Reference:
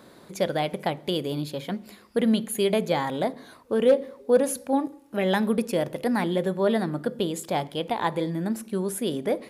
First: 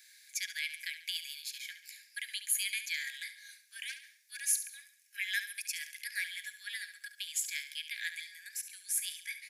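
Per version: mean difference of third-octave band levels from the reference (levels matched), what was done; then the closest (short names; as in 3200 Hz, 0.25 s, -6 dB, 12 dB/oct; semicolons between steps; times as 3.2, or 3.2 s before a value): 22.0 dB: rippled Chebyshev high-pass 1600 Hz, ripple 9 dB; high shelf 8800 Hz +8.5 dB; feedback echo 70 ms, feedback 41%, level -11 dB; gain +3.5 dB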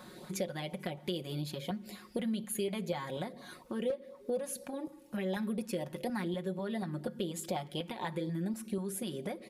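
4.0 dB: comb 5.5 ms, depth 59%; compressor 4:1, threshold -34 dBFS, peak gain reduction 19 dB; LFO notch saw up 4.1 Hz 300–1900 Hz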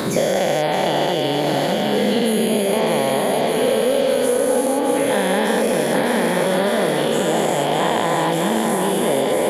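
11.5 dB: spectral dilation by 0.48 s; on a send: thinning echo 0.606 s, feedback 71%, high-pass 170 Hz, level -5.5 dB; on the sum: three-band squash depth 100%; gain -3.5 dB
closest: second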